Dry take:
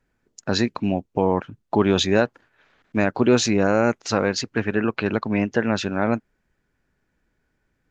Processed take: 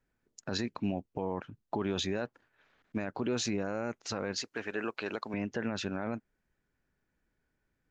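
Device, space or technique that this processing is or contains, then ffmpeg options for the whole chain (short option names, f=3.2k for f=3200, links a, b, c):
stacked limiters: -filter_complex "[0:a]asettb=1/sr,asplit=3[a][b][c];[a]atrim=end=4.414[d];[b]atrim=start=4.41:end=5.34,asetpts=PTS-STARTPTS,afade=t=in:d=0.004:c=qsin,afade=t=out:st=0.926:d=0.004:c=qsin,bass=f=250:g=-15,treble=f=4k:g=9[e];[c]atrim=start=5.336[f];[d][e]acrossfade=d=0.004:c1=hsin:c2=qsin[g];[g][f]acrossfade=d=0.004:c1=qsin:c2=hsin,alimiter=limit=-7.5dB:level=0:latency=1:release=408,alimiter=limit=-14dB:level=0:latency=1:release=39,volume=-8.5dB"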